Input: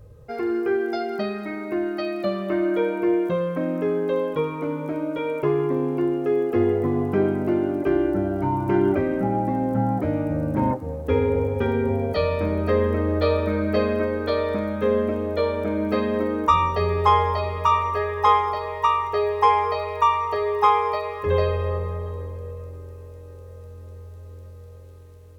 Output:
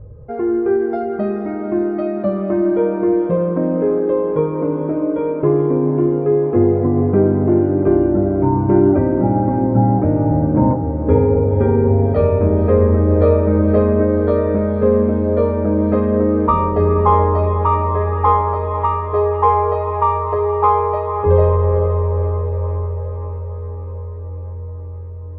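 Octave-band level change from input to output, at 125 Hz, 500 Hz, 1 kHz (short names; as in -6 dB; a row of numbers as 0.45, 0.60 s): +11.0, +7.0, +3.5 dB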